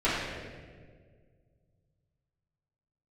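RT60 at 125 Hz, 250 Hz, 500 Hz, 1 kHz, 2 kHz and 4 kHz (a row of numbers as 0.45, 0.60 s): 3.2, 2.3, 2.2, 1.5, 1.4, 1.1 s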